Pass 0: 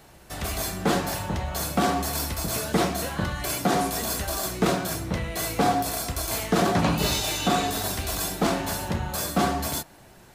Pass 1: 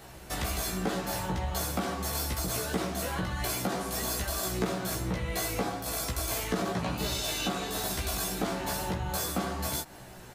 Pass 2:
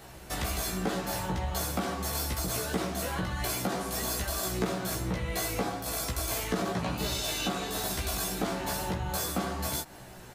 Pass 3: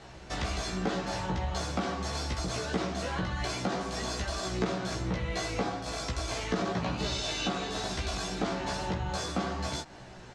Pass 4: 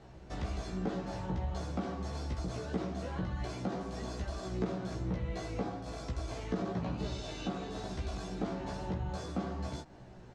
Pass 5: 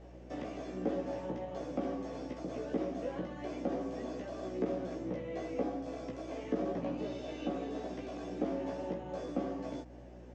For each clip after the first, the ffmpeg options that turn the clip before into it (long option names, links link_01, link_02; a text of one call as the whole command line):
ffmpeg -i in.wav -filter_complex "[0:a]acompressor=threshold=-32dB:ratio=6,asplit=2[link_01][link_02];[link_02]adelay=16,volume=-3dB[link_03];[link_01][link_03]amix=inputs=2:normalize=0,volume=1.5dB" out.wav
ffmpeg -i in.wav -af anull out.wav
ffmpeg -i in.wav -af "lowpass=frequency=6500:width=0.5412,lowpass=frequency=6500:width=1.3066" out.wav
ffmpeg -i in.wav -af "tiltshelf=frequency=870:gain=6,volume=-8dB" out.wav
ffmpeg -i in.wav -filter_complex "[0:a]acrossover=split=3800[link_01][link_02];[link_02]acompressor=threshold=-60dB:ratio=4:attack=1:release=60[link_03];[link_01][link_03]amix=inputs=2:normalize=0,highpass=frequency=170:width=0.5412,highpass=frequency=170:width=1.3066,equalizer=frequency=190:width_type=q:width=4:gain=-6,equalizer=frequency=280:width_type=q:width=4:gain=9,equalizer=frequency=540:width_type=q:width=4:gain=9,equalizer=frequency=960:width_type=q:width=4:gain=-4,equalizer=frequency=1400:width_type=q:width=4:gain=-6,equalizer=frequency=4100:width_type=q:width=4:gain=-9,lowpass=frequency=7500:width=0.5412,lowpass=frequency=7500:width=1.3066,aeval=exprs='val(0)+0.00282*(sin(2*PI*60*n/s)+sin(2*PI*2*60*n/s)/2+sin(2*PI*3*60*n/s)/3+sin(2*PI*4*60*n/s)/4+sin(2*PI*5*60*n/s)/5)':channel_layout=same,volume=-1dB" out.wav